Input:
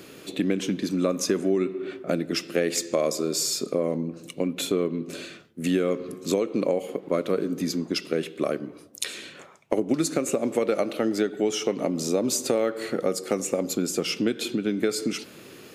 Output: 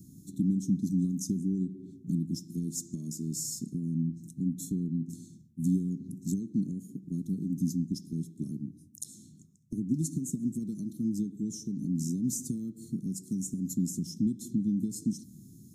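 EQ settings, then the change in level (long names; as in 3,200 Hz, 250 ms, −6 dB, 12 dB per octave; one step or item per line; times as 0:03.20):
inverse Chebyshev band-stop filter 490–2,800 Hz, stop band 50 dB
high-shelf EQ 2,500 Hz −11.5 dB
notch filter 4,700 Hz, Q 6.5
+4.0 dB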